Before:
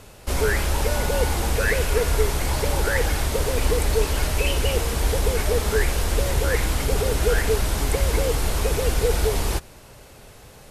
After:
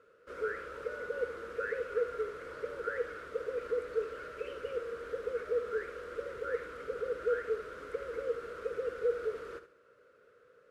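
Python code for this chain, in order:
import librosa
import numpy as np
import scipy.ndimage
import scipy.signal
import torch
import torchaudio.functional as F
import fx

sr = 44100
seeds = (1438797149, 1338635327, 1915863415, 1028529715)

y = fx.quant_float(x, sr, bits=2)
y = fx.double_bandpass(y, sr, hz=810.0, octaves=1.5)
y = fx.echo_feedback(y, sr, ms=71, feedback_pct=29, wet_db=-11.5)
y = y * 10.0 ** (-6.0 / 20.0)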